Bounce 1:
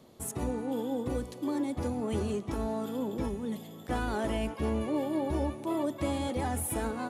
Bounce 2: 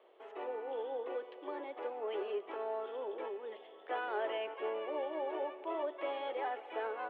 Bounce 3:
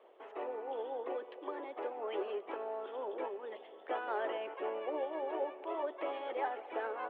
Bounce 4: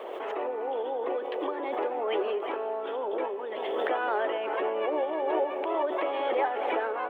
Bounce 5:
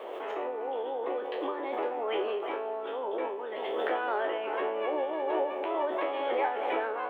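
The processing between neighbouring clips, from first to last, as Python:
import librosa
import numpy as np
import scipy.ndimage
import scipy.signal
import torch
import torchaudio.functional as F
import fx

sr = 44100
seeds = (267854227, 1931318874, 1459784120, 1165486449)

y1 = scipy.signal.sosfilt(scipy.signal.cheby1(4, 1.0, [390.0, 3100.0], 'bandpass', fs=sr, output='sos'), x)
y1 = y1 * librosa.db_to_amplitude(-2.0)
y2 = fx.high_shelf(y1, sr, hz=3400.0, db=-10.5)
y2 = fx.hpss(y2, sr, part='harmonic', gain_db=-9)
y2 = y2 * librosa.db_to_amplitude(7.0)
y3 = y2 + 10.0 ** (-15.5 / 20.0) * np.pad(y2, (int(349 * sr / 1000.0), 0))[:len(y2)]
y3 = fx.pre_swell(y3, sr, db_per_s=23.0)
y3 = y3 * librosa.db_to_amplitude(7.5)
y4 = fx.spec_trails(y3, sr, decay_s=0.38)
y4 = y4 * librosa.db_to_amplitude(-3.0)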